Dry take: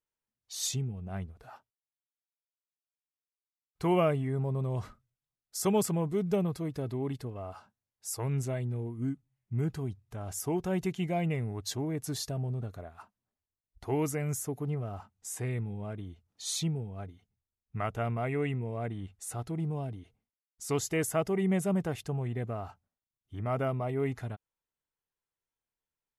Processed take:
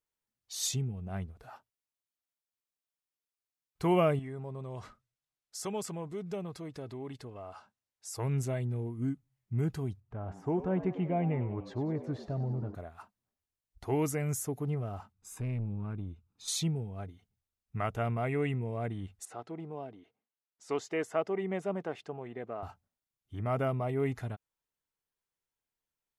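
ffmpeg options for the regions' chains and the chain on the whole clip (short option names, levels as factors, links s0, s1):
-filter_complex "[0:a]asettb=1/sr,asplit=3[s0][s1][s2];[s0]atrim=end=4.194[s3];[s1]atrim=start=4.19:end=8.15,asetpts=PTS-STARTPTS,afade=t=in:d=0.004:c=qsin,afade=t=out:st=3.956:d=0.004:c=qsin,lowpass=8700,lowshelf=f=270:g=-8.5,acompressor=threshold=0.00708:ratio=1.5:attack=3.2:release=140:knee=1:detection=peak[s4];[s2]atrim=start=8.146[s5];[s3][s4]acrossfade=d=0.004:c1=hsin:c2=qsin[s6];[s6][s5]acrossfade=d=0.004:c1=qsin:c2=hsin,asettb=1/sr,asplit=3[s7][s8][s9];[s7]atrim=end=10.004[s10];[s8]atrim=start=10:end=12.75,asetpts=PTS-STARTPTS,afade=t=in:d=0.004:c=qsin,afade=t=out:st=2.746:d=0.004:c=qsin,lowpass=1500,asplit=6[s11][s12][s13][s14][s15][s16];[s12]adelay=97,afreqshift=90,volume=0.211[s17];[s13]adelay=194,afreqshift=180,volume=0.114[s18];[s14]adelay=291,afreqshift=270,volume=0.0617[s19];[s15]adelay=388,afreqshift=360,volume=0.0331[s20];[s16]adelay=485,afreqshift=450,volume=0.018[s21];[s11][s17][s18][s19][s20][s21]amix=inputs=6:normalize=0,atrim=end_sample=121275[s22];[s9]atrim=start=12.746[s23];[s10][s22]acrossfade=d=0.004:c1=hsin:c2=qsin[s24];[s24][s23]acrossfade=d=0.004:c1=qsin:c2=hsin,asettb=1/sr,asplit=3[s25][s26][s27];[s25]atrim=end=15.124[s28];[s26]atrim=start=15.12:end=16.48,asetpts=PTS-STARTPTS,afade=t=in:d=0.004:c=qsin,afade=t=out:st=1.356:d=0.004:c=qsin,highshelf=f=2400:g=-10.5,aecho=1:1:0.8:0.63,atrim=end_sample=59976,aeval=exprs='(tanh(31.6*val(0)+0.3)-tanh(0.3))/31.6':c=same[s29];[s27]atrim=start=16.476[s30];[s28][s29]acrossfade=d=0.004:c1=hsin:c2=qsin[s31];[s31][s30]acrossfade=d=0.004:c1=qsin:c2=hsin,asettb=1/sr,asplit=3[s32][s33][s34];[s32]atrim=end=19.254[s35];[s33]atrim=start=19.25:end=22.63,asetpts=PTS-STARTPTS,afade=t=in:d=0.004:c=qsin,afade=t=out:st=3.376:d=0.004:c=qsin,highpass=330,lowpass=5600,highshelf=f=2900:g=-9[s36];[s34]atrim=start=22.626[s37];[s35][s36]acrossfade=d=0.004:c1=hsin:c2=qsin[s38];[s38][s37]acrossfade=d=0.004:c1=qsin:c2=hsin"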